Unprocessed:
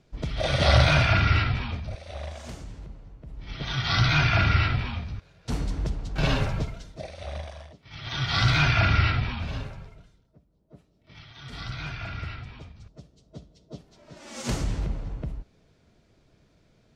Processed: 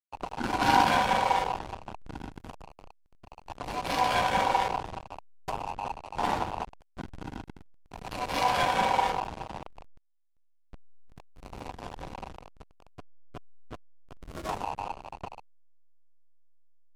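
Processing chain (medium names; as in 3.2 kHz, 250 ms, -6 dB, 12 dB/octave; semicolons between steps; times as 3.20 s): upward compressor, threshold -24 dBFS; ring modulator 870 Hz; hysteresis with a dead band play -22 dBFS; MP3 80 kbps 44.1 kHz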